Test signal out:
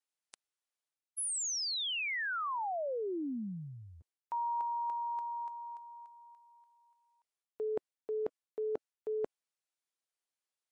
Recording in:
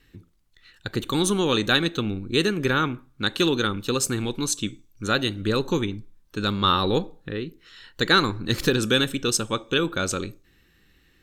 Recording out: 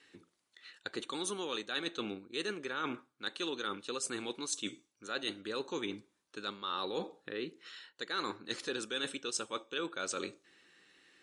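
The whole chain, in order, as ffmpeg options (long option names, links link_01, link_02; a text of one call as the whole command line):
ffmpeg -i in.wav -af "highpass=380,areverse,acompressor=threshold=-35dB:ratio=5,areverse" -ar 32000 -c:a libmp3lame -b:a 48k out.mp3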